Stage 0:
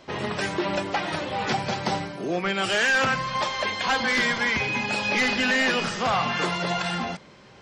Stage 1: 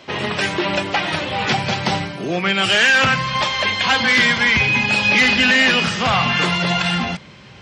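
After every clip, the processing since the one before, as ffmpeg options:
-af "asubboost=boost=2.5:cutoff=210,highpass=61,equalizer=f=2.8k:t=o:w=1.2:g=6.5,volume=5dB"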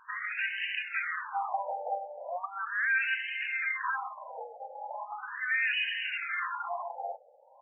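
-af "alimiter=limit=-13.5dB:level=0:latency=1:release=18,afftfilt=real='re*between(b*sr/1024,610*pow(2200/610,0.5+0.5*sin(2*PI*0.38*pts/sr))/1.41,610*pow(2200/610,0.5+0.5*sin(2*PI*0.38*pts/sr))*1.41)':imag='im*between(b*sr/1024,610*pow(2200/610,0.5+0.5*sin(2*PI*0.38*pts/sr))/1.41,610*pow(2200/610,0.5+0.5*sin(2*PI*0.38*pts/sr))*1.41)':win_size=1024:overlap=0.75,volume=-6dB"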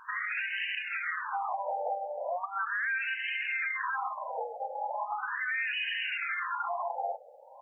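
-af "acompressor=threshold=-33dB:ratio=6,alimiter=level_in=7dB:limit=-24dB:level=0:latency=1:release=150,volume=-7dB,volume=6.5dB"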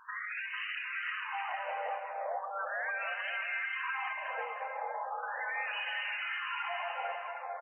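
-af "aecho=1:1:450|765|985.5|1140|1248:0.631|0.398|0.251|0.158|0.1,volume=-5.5dB"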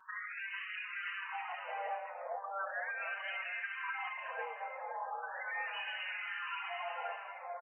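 -filter_complex "[0:a]asplit=2[a][b];[b]adelay=4.8,afreqshift=-1.5[c];[a][c]amix=inputs=2:normalize=1,volume=-1dB"

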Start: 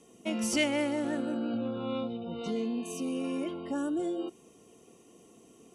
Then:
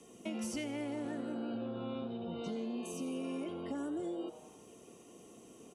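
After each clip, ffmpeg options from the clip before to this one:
-filter_complex "[0:a]acrossover=split=190|400[a][b][c];[a]acompressor=threshold=-47dB:ratio=4[d];[b]acompressor=threshold=-46dB:ratio=4[e];[c]acompressor=threshold=-47dB:ratio=4[f];[d][e][f]amix=inputs=3:normalize=0,asplit=6[g][h][i][j][k][l];[h]adelay=86,afreqshift=140,volume=-14dB[m];[i]adelay=172,afreqshift=280,volume=-20dB[n];[j]adelay=258,afreqshift=420,volume=-26dB[o];[k]adelay=344,afreqshift=560,volume=-32.1dB[p];[l]adelay=430,afreqshift=700,volume=-38.1dB[q];[g][m][n][o][p][q]amix=inputs=6:normalize=0,volume=1dB"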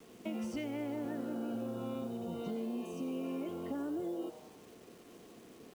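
-af "aemphasis=mode=reproduction:type=75fm,acrusher=bits=9:mix=0:aa=0.000001"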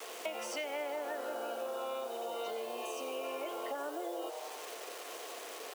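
-af "highpass=f=540:w=0.5412,highpass=f=540:w=1.3066,acompressor=threshold=-57dB:ratio=2.5,volume=17dB"

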